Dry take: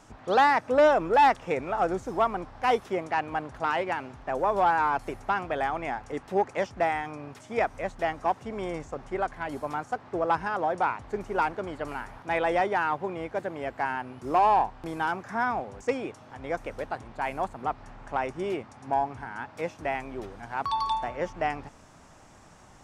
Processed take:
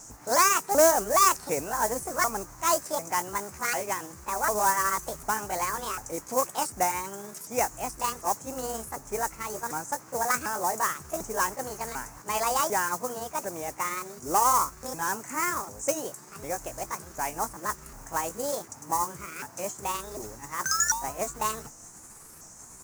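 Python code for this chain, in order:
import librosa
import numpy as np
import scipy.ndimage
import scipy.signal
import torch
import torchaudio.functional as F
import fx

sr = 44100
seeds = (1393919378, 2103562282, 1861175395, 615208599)

y = fx.pitch_ramps(x, sr, semitones=8.5, every_ms=747)
y = fx.mod_noise(y, sr, seeds[0], snr_db=21)
y = fx.high_shelf_res(y, sr, hz=4700.0, db=12.0, q=3.0)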